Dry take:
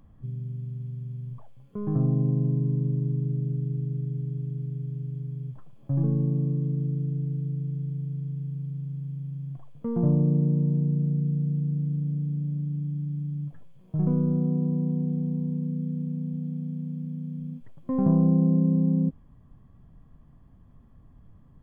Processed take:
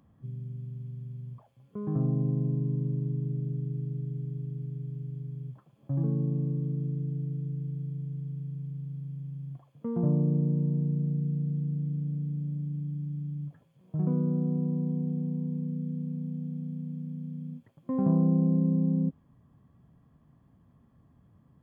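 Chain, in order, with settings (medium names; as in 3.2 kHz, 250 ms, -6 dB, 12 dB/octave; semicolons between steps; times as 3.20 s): high-pass 100 Hz; trim -3 dB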